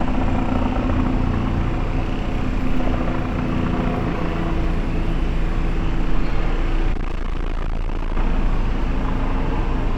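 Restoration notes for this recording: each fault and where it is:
6.92–8.17 s: clipped -19.5 dBFS

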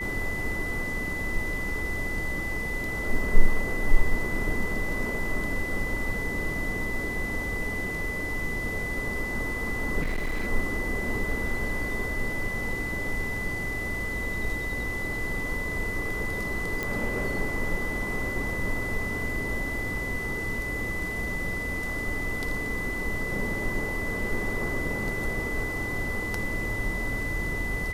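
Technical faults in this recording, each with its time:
whine 2 kHz -31 dBFS
10.01–10.48 s: clipped -24.5 dBFS
16.83 s: pop

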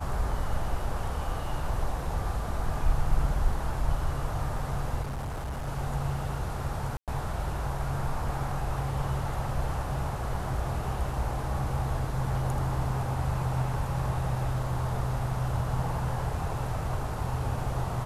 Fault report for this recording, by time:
5.02–5.68 s: clipped -30.5 dBFS
6.97–7.08 s: dropout 107 ms

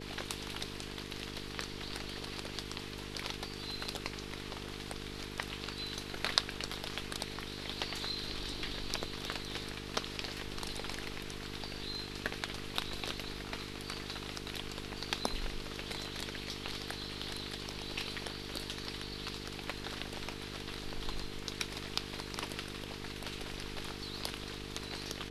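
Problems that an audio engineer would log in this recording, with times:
buzz 50 Hz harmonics 9 -46 dBFS

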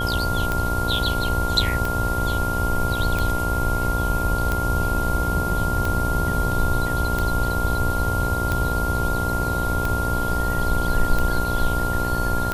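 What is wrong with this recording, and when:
buzz 60 Hz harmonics 18 -27 dBFS
tick 45 rpm -10 dBFS
whine 1.4 kHz -25 dBFS

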